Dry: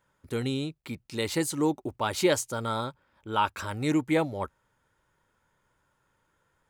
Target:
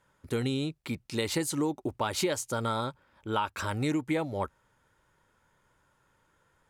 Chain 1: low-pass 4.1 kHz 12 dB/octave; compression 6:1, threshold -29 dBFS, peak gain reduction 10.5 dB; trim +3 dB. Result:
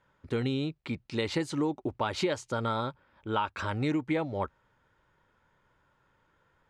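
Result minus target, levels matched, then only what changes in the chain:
8 kHz band -10.5 dB
change: low-pass 15 kHz 12 dB/octave

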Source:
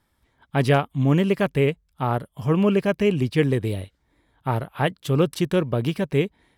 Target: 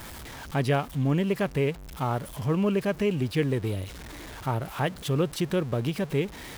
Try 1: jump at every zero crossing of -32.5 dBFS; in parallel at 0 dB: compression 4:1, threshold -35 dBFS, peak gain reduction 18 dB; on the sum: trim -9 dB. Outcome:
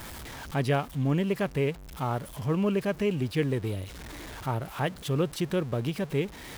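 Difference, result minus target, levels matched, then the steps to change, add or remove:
compression: peak gain reduction +7.5 dB
change: compression 4:1, threshold -25 dBFS, peak gain reduction 10.5 dB

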